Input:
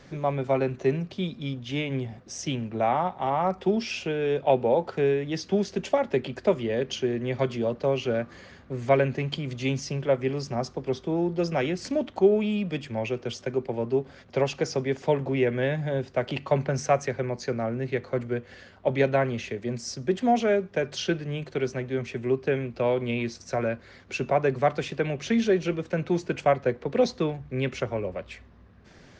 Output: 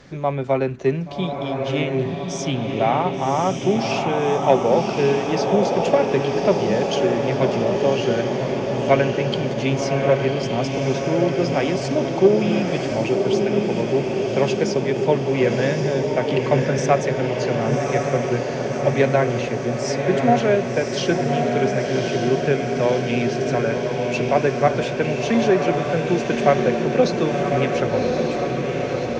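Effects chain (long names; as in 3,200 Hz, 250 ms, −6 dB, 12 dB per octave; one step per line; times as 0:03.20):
harmonic generator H 3 −23 dB, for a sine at −8 dBFS
feedback delay with all-pass diffusion 1,122 ms, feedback 68%, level −3 dB
level +6 dB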